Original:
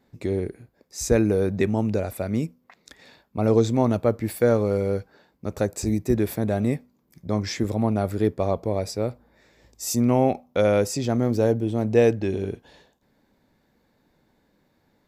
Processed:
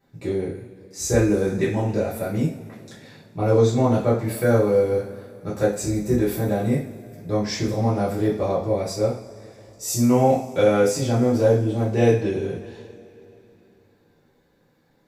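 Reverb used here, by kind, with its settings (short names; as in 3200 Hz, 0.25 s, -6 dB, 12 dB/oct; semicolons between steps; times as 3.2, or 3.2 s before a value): two-slope reverb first 0.42 s, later 3.3 s, from -22 dB, DRR -9 dB; gain -7 dB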